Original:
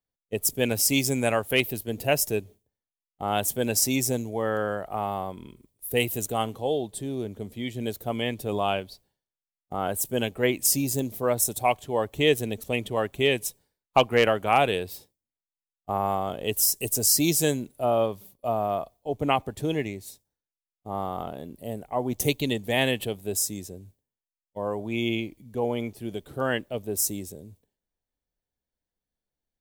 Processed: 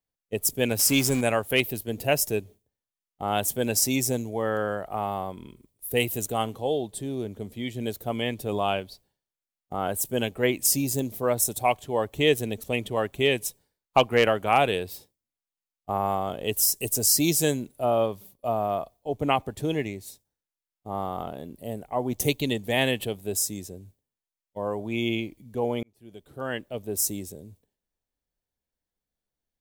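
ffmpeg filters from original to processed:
-filter_complex "[0:a]asettb=1/sr,asplit=3[a][b][c];[a]atrim=end=0.794[d];[b]atrim=start=0.79:end=1.21,asetpts=PTS-STARTPTS,afade=t=in:d=0.004:c=qsin,afade=t=out:st=0.416:d=0.004:c=qsin,aeval=exprs='val(0)+0.5*0.0316*sgn(val(0))':c=same[e];[c]atrim=start=1.206[f];[d][e]acrossfade=d=0.004:c1=hsin:c2=qsin[g];[g][f]acrossfade=d=0.004:c1=qsin:c2=hsin,asplit=2[h][i];[h]atrim=end=25.83,asetpts=PTS-STARTPTS,afade=t=out:st=25.826:d=0.004:c=hsin[j];[i]atrim=start=25.83,asetpts=PTS-STARTPTS,afade=t=in:d=1.19[k];[j][k]concat=n=2:v=0:a=1"

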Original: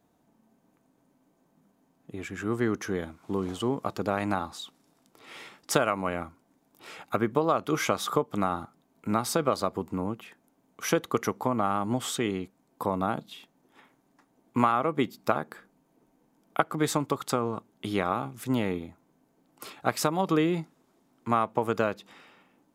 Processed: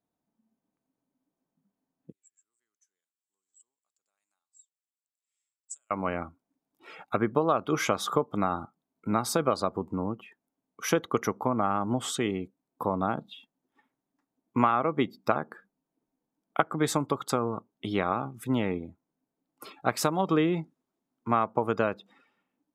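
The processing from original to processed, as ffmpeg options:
-filter_complex "[0:a]asettb=1/sr,asplit=3[a][b][c];[a]atrim=end=2.124[d];[b]atrim=start=2.12:end=5.91,asetpts=PTS-STARTPTS,afade=t=in:d=0.004:c=qsin,afade=t=out:st=3.786:d=0.004:c=qsin,bandpass=f=7.7k:t=q:w=11[e];[c]atrim=start=5.906[f];[d][e]acrossfade=d=0.004:c1=hsin:c2=qsin[g];[g][f]acrossfade=d=0.004:c1=qsin:c2=hsin,afftdn=nr=18:nf=-46"

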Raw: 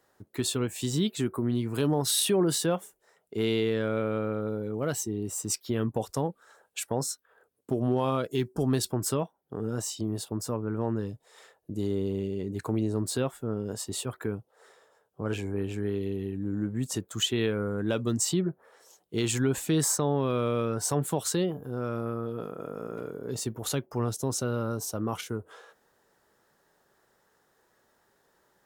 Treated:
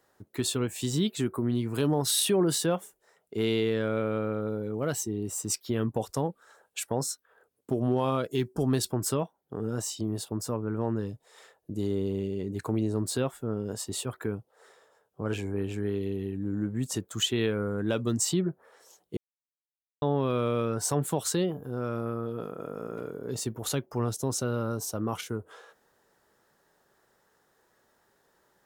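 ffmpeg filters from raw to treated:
-filter_complex "[0:a]asplit=3[a][b][c];[a]atrim=end=19.17,asetpts=PTS-STARTPTS,afade=t=out:st=19.166:d=0.004:c=hsin[d];[b]atrim=start=19.17:end=20.02,asetpts=PTS-STARTPTS,volume=0[e];[c]atrim=start=20.02,asetpts=PTS-STARTPTS,afade=t=in:d=0.004:c=hsin[f];[d][e][f]concat=n=3:v=0:a=1"

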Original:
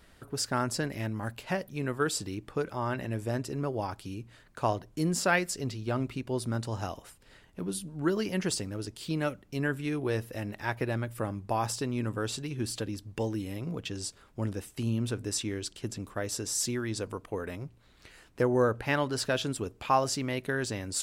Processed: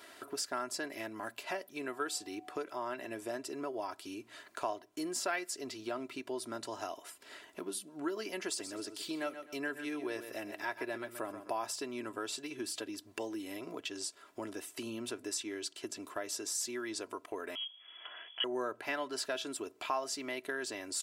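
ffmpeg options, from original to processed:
-filter_complex "[0:a]asettb=1/sr,asplit=3[a][b][c];[a]atrim=end=1.884[d];[b]atrim=start=1.88:end=2.56,asetpts=PTS-STARTPTS,afade=t=in:d=0.004:c=qsin,afade=t=out:st=0.676:d=0.004:c=qsin,aeval=exprs='val(0)+0.002*sin(2*PI*740*n/s)':c=same[e];[c]atrim=start=2.556[f];[d][e]acrossfade=d=0.004:c1=hsin:c2=qsin[g];[g][f]acrossfade=d=0.004:c1=qsin:c2=hsin,asettb=1/sr,asplit=3[h][i][j];[h]atrim=end=8.464[k];[i]atrim=start=8.46:end=11.52,asetpts=PTS-STARTPTS,afade=t=in:d=0.004:c=qsin,afade=t=out:st=3.056:d=0.004:c=qsin,aecho=1:1:127|254|381:0.251|0.0553|0.0122,atrim=end_sample=134946[l];[j]atrim=start=11.516[m];[k][l]acrossfade=d=0.004:c1=hsin:c2=qsin[n];[n][m]acrossfade=d=0.004:c1=qsin:c2=hsin,asettb=1/sr,asplit=3[o][p][q];[o]atrim=end=17.554[r];[p]atrim=start=17.55:end=18.44,asetpts=PTS-STARTPTS,afade=t=in:d=0.004:c=qsin,afade=t=out:st=0.886:d=0.004:c=qsin,lowpass=f=2.9k:t=q:w=0.5098,lowpass=f=2.9k:t=q:w=0.6013,lowpass=f=2.9k:t=q:w=0.9,lowpass=f=2.9k:t=q:w=2.563,afreqshift=-3400[s];[q]atrim=start=18.436[t];[r][s]acrossfade=d=0.004:c1=hsin:c2=qsin[u];[u][t]acrossfade=d=0.004:c1=qsin:c2=hsin,highpass=390,aecho=1:1:3:0.6,acompressor=threshold=-52dB:ratio=2,volume=6.5dB"

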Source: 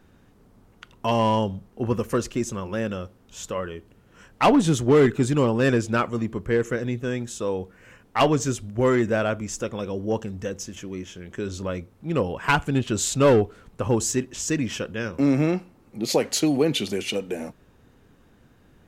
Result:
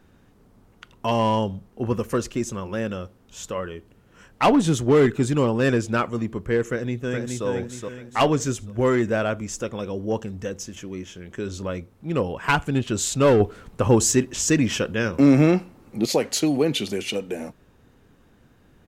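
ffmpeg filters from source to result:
-filter_complex "[0:a]asplit=2[a][b];[b]afade=t=in:st=6.69:d=0.01,afade=t=out:st=7.46:d=0.01,aecho=0:1:420|840|1260|1680|2100:0.630957|0.252383|0.100953|0.0403813|0.0161525[c];[a][c]amix=inputs=2:normalize=0,asettb=1/sr,asplit=3[d][e][f];[d]atrim=end=13.404[g];[e]atrim=start=13.4:end=16.06,asetpts=PTS-STARTPTS,afade=t=in:d=0.004:c=qsin,afade=t=out:st=2.656:d=0.004:c=qsin,acontrast=37[h];[f]atrim=start=16.056[i];[g][h]acrossfade=d=0.004:c1=hsin:c2=qsin[j];[j][i]acrossfade=d=0.004:c1=qsin:c2=hsin"

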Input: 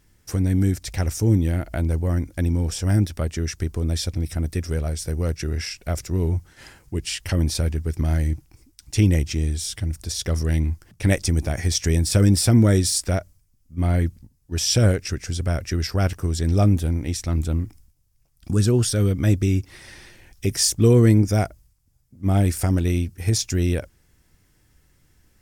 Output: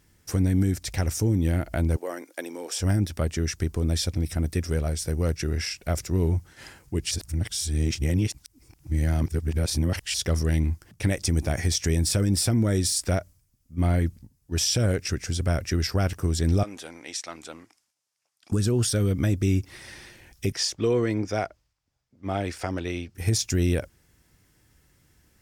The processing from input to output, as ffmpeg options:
-filter_complex "[0:a]asettb=1/sr,asplit=3[a][b][c];[a]atrim=end=1.964[d];[b]atrim=start=1.96:end=2.8,asetpts=PTS-STARTPTS,afade=t=in:d=0.004:c=qsin,afade=t=out:st=0.836:d=0.004:c=qsin,highpass=f=380:w=0.5412,highpass=f=380:w=1.3066[e];[c]atrim=start=2.796[f];[d][e]acrossfade=d=0.004:c1=hsin:c2=qsin[g];[g][f]acrossfade=d=0.004:c1=qsin:c2=hsin,asettb=1/sr,asplit=3[h][i][j];[h]atrim=end=16.634[k];[i]atrim=start=16.63:end=18.52,asetpts=PTS-STARTPTS,afade=t=in:d=0.004:c=qsin,afade=t=out:st=1.886:d=0.004:c=qsin,highpass=690,lowpass=7.6k[l];[j]atrim=start=18.516[m];[k][l]acrossfade=d=0.004:c1=hsin:c2=qsin[n];[n][m]acrossfade=d=0.004:c1=qsin:c2=hsin,asettb=1/sr,asplit=3[o][p][q];[o]atrim=end=20.524[r];[p]atrim=start=20.52:end=23.15,asetpts=PTS-STARTPTS,afade=t=in:d=0.004:c=qsin,afade=t=out:st=2.626:d=0.004:c=qsin,acrossover=split=370 5500:gain=0.224 1 0.0891[s][t][u];[s][t][u]amix=inputs=3:normalize=0[v];[q]atrim=start=23.146[w];[r][v]acrossfade=d=0.004:c1=hsin:c2=qsin[x];[x][w]acrossfade=d=0.004:c1=qsin:c2=hsin,asplit=3[y][z][aa];[y]atrim=end=7.112[ab];[z]atrim=start=7.108:end=10.142,asetpts=PTS-STARTPTS,areverse[ac];[aa]atrim=start=10.138[ad];[ab][ac]acrossfade=d=0.004:c1=hsin:c2=hsin[ae];[ae][ad]acrossfade=d=0.004:c1=hsin:c2=hsin,highpass=f=58:p=1,alimiter=limit=-14.5dB:level=0:latency=1:release=127"

